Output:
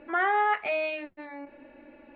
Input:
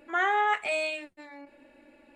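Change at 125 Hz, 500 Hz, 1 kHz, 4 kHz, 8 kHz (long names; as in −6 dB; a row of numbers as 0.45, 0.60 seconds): can't be measured, +2.0 dB, +1.0 dB, −5.5 dB, below −30 dB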